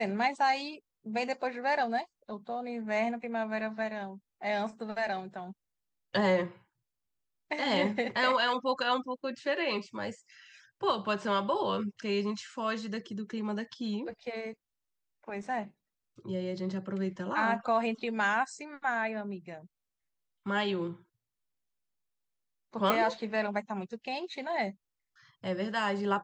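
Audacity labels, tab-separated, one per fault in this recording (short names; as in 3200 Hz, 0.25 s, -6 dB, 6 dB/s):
22.900000	22.900000	pop -12 dBFS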